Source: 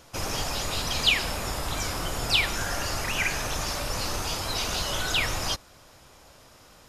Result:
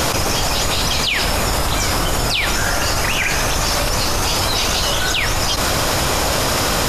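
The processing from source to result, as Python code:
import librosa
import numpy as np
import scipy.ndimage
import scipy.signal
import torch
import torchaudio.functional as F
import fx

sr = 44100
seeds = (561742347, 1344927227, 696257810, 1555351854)

y = fx.env_flatten(x, sr, amount_pct=100)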